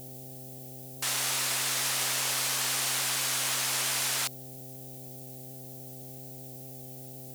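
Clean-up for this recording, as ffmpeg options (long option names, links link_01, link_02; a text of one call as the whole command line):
ffmpeg -i in.wav -af "bandreject=frequency=130.5:width_type=h:width=4,bandreject=frequency=261:width_type=h:width=4,bandreject=frequency=391.5:width_type=h:width=4,bandreject=frequency=522:width_type=h:width=4,bandreject=frequency=652.5:width_type=h:width=4,bandreject=frequency=783:width_type=h:width=4,afftdn=noise_reduction=30:noise_floor=-44" out.wav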